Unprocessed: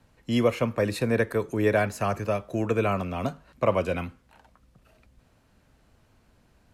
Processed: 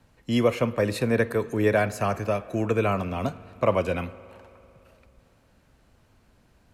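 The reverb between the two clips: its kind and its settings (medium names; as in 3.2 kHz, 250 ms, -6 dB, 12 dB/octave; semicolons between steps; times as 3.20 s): spring tank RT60 3 s, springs 56 ms, chirp 45 ms, DRR 17.5 dB; trim +1 dB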